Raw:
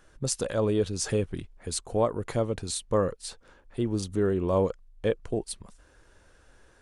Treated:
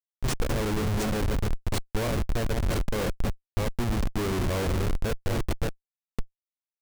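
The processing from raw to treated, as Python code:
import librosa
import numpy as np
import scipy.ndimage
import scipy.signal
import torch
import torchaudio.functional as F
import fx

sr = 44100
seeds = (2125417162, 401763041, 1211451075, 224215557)

y = fx.reverse_delay(x, sr, ms=413, wet_db=-5.5)
y = fx.low_shelf(y, sr, hz=160.0, db=3.0, at=(4.57, 5.25), fade=0.02)
y = fx.rev_fdn(y, sr, rt60_s=3.1, lf_ratio=1.0, hf_ratio=0.3, size_ms=26.0, drr_db=10.5)
y = fx.schmitt(y, sr, flips_db=-26.5)
y = fx.low_shelf(y, sr, hz=75.0, db=8.0)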